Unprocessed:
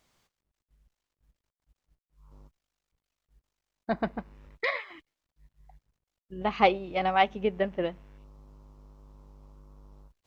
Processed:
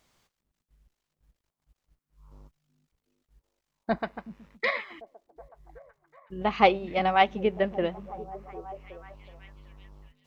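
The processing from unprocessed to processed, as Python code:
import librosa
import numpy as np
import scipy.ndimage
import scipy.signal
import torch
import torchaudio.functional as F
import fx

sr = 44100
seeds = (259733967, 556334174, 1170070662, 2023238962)

y = fx.low_shelf(x, sr, hz=450.0, db=-11.5, at=(3.98, 4.64))
y = fx.echo_stepped(y, sr, ms=373, hz=200.0, octaves=0.7, feedback_pct=70, wet_db=-11.5)
y = F.gain(torch.from_numpy(y), 2.0).numpy()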